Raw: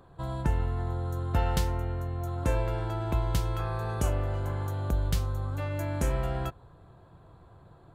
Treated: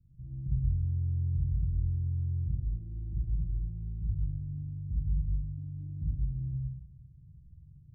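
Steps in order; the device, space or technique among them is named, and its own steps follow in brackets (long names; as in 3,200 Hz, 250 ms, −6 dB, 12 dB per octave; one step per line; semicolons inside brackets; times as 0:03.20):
club heard from the street (brickwall limiter −21.5 dBFS, peak gain reduction 7.5 dB; low-pass filter 160 Hz 24 dB per octave; convolution reverb RT60 1.0 s, pre-delay 32 ms, DRR −5 dB)
level −5 dB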